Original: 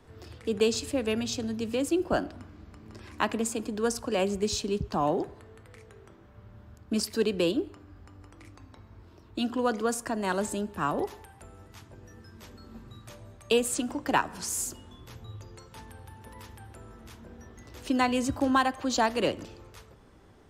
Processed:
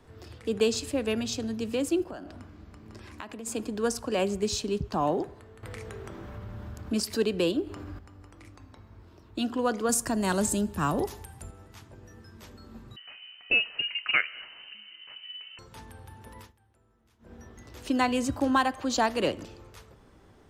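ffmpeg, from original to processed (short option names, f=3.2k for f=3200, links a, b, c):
-filter_complex "[0:a]asplit=3[a][b][c];[a]afade=t=out:st=2.03:d=0.02[d];[b]acompressor=threshold=-37dB:ratio=6:attack=3.2:release=140:knee=1:detection=peak,afade=t=in:st=2.03:d=0.02,afade=t=out:st=3.46:d=0.02[e];[c]afade=t=in:st=3.46:d=0.02[f];[d][e][f]amix=inputs=3:normalize=0,asettb=1/sr,asplit=3[g][h][i];[g]atrim=end=5.634[j];[h]atrim=start=5.63:end=7.99,asetpts=PTS-STARTPTS,afade=t=in:d=0.004:c=qsin,afade=t=out:st=2.356:d=0.004:c=qsin,acompressor=mode=upward:threshold=-28dB:ratio=2.5:attack=3.2:release=140:knee=2.83:detection=peak[k];[i]atrim=start=7.986[l];[j][k]acrossfade=d=0.004:c1=hsin:c2=qsin[m];[m][l]acrossfade=d=0.004:c1=qsin:c2=hsin,asettb=1/sr,asplit=3[n][o][p];[n]atrim=end=9.894[q];[o]atrim=start=9.89:end=11.51,asetpts=PTS-STARTPTS,afade=t=in:d=0.004:c=qsin,afade=t=out:st=1.616:d=0.004:c=qsin,bass=f=250:g=8,treble=f=4k:g=9[r];[p]atrim=start=11.506[s];[q][r]acrossfade=d=0.004:c1=hsin:c2=qsin[t];[t][s]acrossfade=d=0.004:c1=qsin:c2=hsin,asettb=1/sr,asplit=3[u][v][w];[u]atrim=end=12.964[x];[v]atrim=start=12.96:end=15.59,asetpts=PTS-STARTPTS,afade=t=in:d=0.004:c=qsin,afade=t=out:st=2.626:d=0.004:c=qsin,lowpass=f=2.6k:t=q:w=0.5098,lowpass=f=2.6k:t=q:w=0.6013,lowpass=f=2.6k:t=q:w=0.9,lowpass=f=2.6k:t=q:w=2.563,afreqshift=-3100[y];[w]atrim=start=15.586[z];[x][y]acrossfade=d=0.004:c1=hsin:c2=qsin[aa];[aa][z]acrossfade=d=0.004:c1=qsin:c2=hsin,asplit=3[ab][ac][ad];[ab]atrim=end=16.53,asetpts=PTS-STARTPTS,afade=t=out:st=16.39:d=0.14:silence=0.112202[ae];[ac]atrim=start=16.53:end=17.19,asetpts=PTS-STARTPTS,volume=-19dB[af];[ad]atrim=start=17.19,asetpts=PTS-STARTPTS,afade=t=in:d=0.14:silence=0.112202[ag];[ae][af][ag]concat=n=3:v=0:a=1"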